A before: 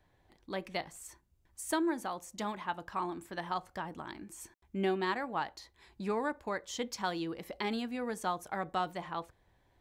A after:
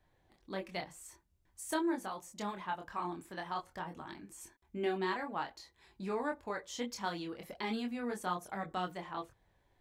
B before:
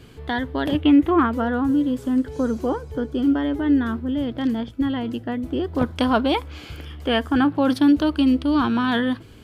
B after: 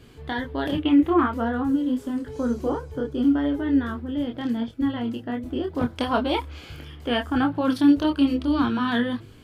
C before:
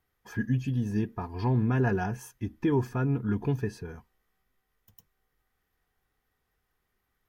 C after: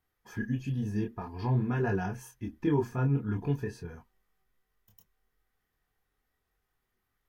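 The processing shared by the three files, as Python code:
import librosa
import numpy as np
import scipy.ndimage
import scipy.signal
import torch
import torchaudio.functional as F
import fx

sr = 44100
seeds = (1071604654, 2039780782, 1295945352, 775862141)

y = fx.chorus_voices(x, sr, voices=4, hz=0.45, base_ms=25, depth_ms=4.4, mix_pct=40)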